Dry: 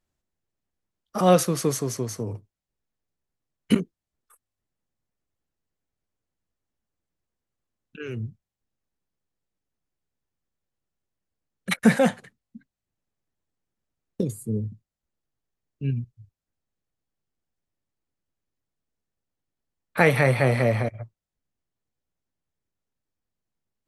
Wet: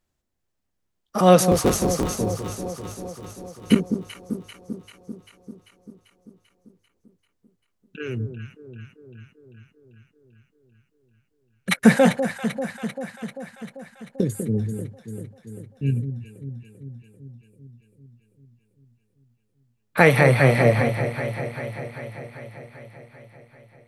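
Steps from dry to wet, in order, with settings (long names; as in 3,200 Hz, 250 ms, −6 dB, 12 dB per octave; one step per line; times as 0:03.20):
0:01.51–0:02.14: sub-harmonics by changed cycles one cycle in 3, inverted
on a send: delay that swaps between a low-pass and a high-pass 196 ms, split 860 Hz, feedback 80%, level −8 dB
on the sum: level +3.5 dB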